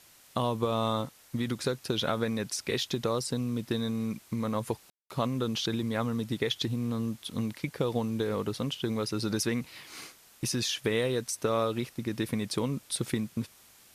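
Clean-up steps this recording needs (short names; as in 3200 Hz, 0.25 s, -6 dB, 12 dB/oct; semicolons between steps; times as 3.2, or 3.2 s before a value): room tone fill 4.9–5.1; noise print and reduce 20 dB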